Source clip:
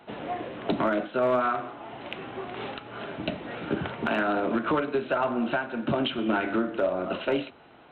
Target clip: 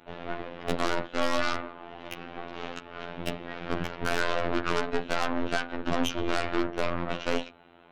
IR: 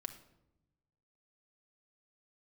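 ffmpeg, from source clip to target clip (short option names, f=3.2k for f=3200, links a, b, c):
-af "aeval=exprs='0.158*(cos(1*acos(clip(val(0)/0.158,-1,1)))-cos(1*PI/2))+0.0562*(cos(6*acos(clip(val(0)/0.158,-1,1)))-cos(6*PI/2))+0.0141*(cos(8*acos(clip(val(0)/0.158,-1,1)))-cos(8*PI/2))':c=same,afftfilt=real='hypot(re,im)*cos(PI*b)':imag='0':win_size=2048:overlap=0.75"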